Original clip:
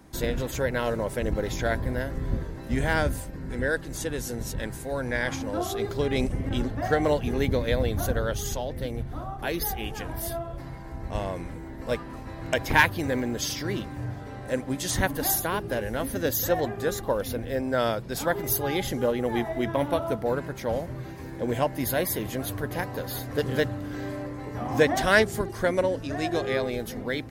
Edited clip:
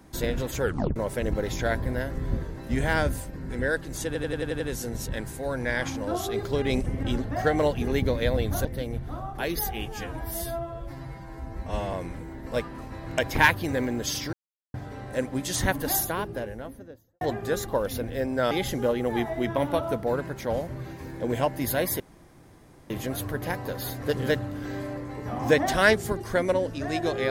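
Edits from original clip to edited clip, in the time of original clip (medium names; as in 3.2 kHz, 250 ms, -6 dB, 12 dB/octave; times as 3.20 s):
0.62 s: tape stop 0.34 s
4.06 s: stutter 0.09 s, 7 plays
8.11–8.69 s: delete
9.90–11.28 s: stretch 1.5×
13.68–14.09 s: mute
15.22–16.56 s: studio fade out
17.86–18.70 s: delete
22.19 s: insert room tone 0.90 s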